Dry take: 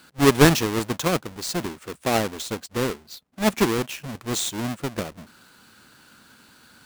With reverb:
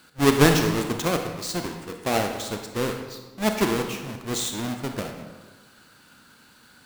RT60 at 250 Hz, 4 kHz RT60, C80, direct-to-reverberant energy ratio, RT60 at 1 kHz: 1.4 s, 0.90 s, 7.5 dB, 4.0 dB, 1.3 s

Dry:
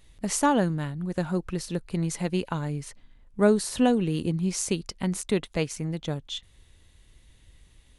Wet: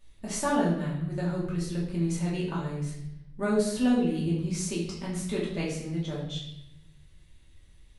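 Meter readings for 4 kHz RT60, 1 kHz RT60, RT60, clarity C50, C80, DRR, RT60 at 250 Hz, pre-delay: 0.75 s, 0.75 s, 0.80 s, 3.5 dB, 6.5 dB, -6.5 dB, 1.2 s, 3 ms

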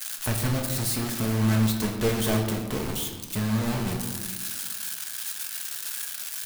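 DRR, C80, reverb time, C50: 1.5 dB, 7.0 dB, 1.4 s, 5.0 dB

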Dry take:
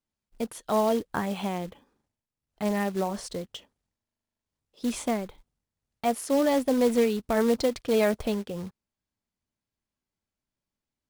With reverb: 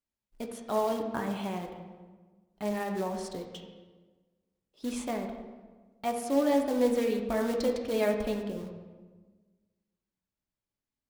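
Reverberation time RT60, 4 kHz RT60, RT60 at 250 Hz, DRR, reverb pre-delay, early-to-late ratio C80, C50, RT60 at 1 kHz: 1.4 s, 0.90 s, 1.7 s, 2.5 dB, 3 ms, 8.0 dB, 6.0 dB, 1.3 s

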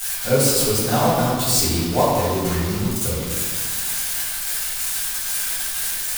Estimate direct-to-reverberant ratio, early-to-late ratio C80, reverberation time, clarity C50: -10.5 dB, 1.0 dB, 1.6 s, -1.5 dB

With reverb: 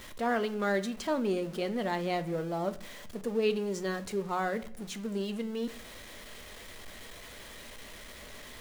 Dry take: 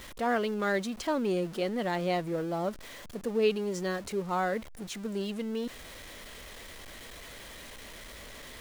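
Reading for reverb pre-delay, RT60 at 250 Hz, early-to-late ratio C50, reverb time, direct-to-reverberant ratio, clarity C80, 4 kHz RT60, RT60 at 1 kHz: 5 ms, 0.80 s, 16.5 dB, 0.55 s, 10.5 dB, 20.5 dB, 0.40 s, 0.50 s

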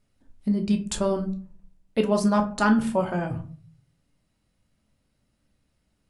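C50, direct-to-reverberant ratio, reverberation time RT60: 13.0 dB, 4.0 dB, 0.40 s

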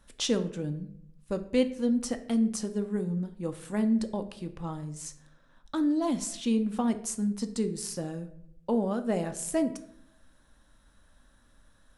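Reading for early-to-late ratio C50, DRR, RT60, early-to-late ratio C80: 13.5 dB, 8.0 dB, 0.70 s, 16.5 dB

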